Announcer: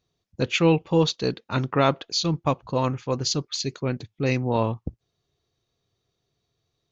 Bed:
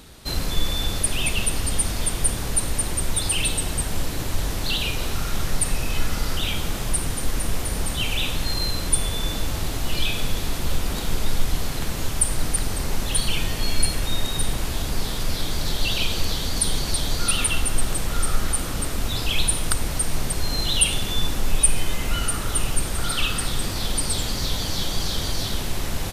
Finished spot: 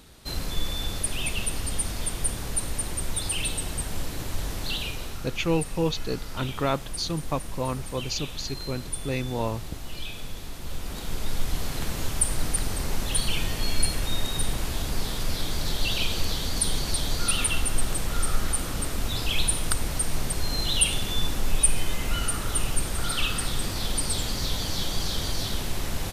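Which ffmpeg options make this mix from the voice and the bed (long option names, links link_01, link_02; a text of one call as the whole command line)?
ffmpeg -i stem1.wav -i stem2.wav -filter_complex "[0:a]adelay=4850,volume=-5.5dB[link_01];[1:a]volume=3.5dB,afade=type=out:start_time=4.72:duration=0.56:silence=0.473151,afade=type=in:start_time=10.58:duration=1.24:silence=0.354813[link_02];[link_01][link_02]amix=inputs=2:normalize=0" out.wav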